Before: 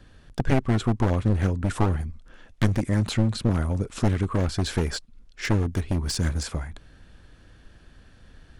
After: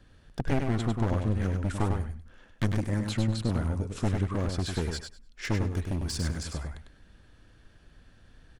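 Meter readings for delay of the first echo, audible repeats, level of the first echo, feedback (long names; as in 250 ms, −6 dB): 100 ms, 2, −5.5 dB, 17%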